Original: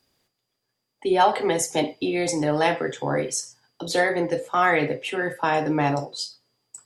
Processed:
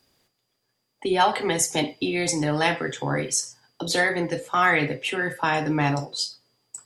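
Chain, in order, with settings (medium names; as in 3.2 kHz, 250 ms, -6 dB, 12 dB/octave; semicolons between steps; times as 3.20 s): dynamic bell 540 Hz, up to -8 dB, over -35 dBFS, Q 0.76; trim +3.5 dB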